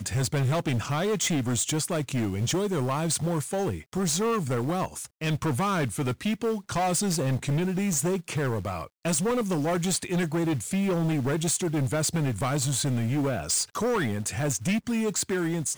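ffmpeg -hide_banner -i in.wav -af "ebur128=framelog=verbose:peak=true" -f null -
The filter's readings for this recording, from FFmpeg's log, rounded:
Integrated loudness:
  I:         -27.0 LUFS
  Threshold: -37.0 LUFS
Loudness range:
  LRA:         1.4 LU
  Threshold: -47.0 LUFS
  LRA low:   -27.7 LUFS
  LRA high:  -26.3 LUFS
True peak:
  Peak:      -18.2 dBFS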